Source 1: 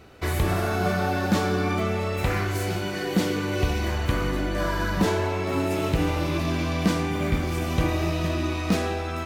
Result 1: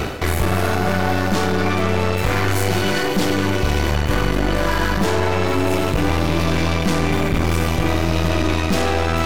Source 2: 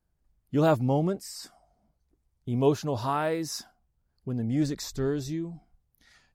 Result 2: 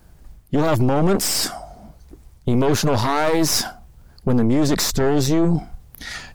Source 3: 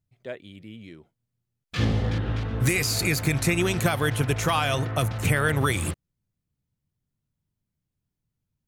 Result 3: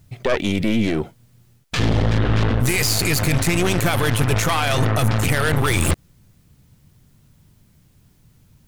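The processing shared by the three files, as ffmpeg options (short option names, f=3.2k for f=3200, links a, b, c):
-af "areverse,acompressor=threshold=-34dB:ratio=16,areverse,aeval=exprs='0.0708*(cos(1*acos(clip(val(0)/0.0708,-1,1)))-cos(1*PI/2))+0.00891*(cos(8*acos(clip(val(0)/0.0708,-1,1)))-cos(8*PI/2))':c=same,alimiter=level_in=35.5dB:limit=-1dB:release=50:level=0:latency=1,volume=-8dB"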